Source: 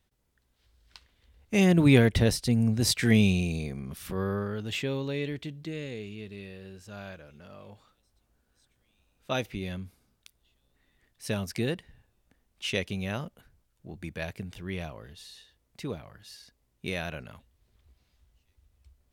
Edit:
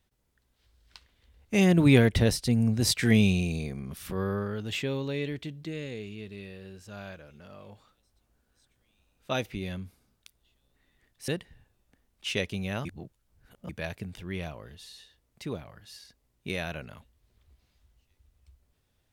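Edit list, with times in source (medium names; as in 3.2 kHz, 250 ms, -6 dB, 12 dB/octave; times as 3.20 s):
11.28–11.66 s: delete
13.23–14.07 s: reverse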